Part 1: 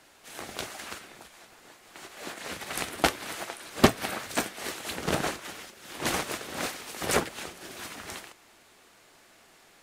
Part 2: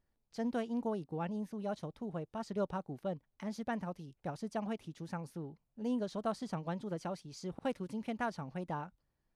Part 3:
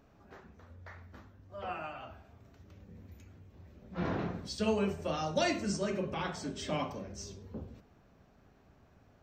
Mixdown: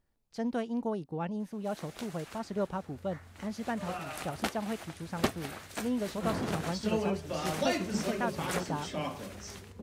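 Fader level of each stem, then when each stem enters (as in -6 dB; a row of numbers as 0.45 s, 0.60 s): -10.0 dB, +3.0 dB, -1.0 dB; 1.40 s, 0.00 s, 2.25 s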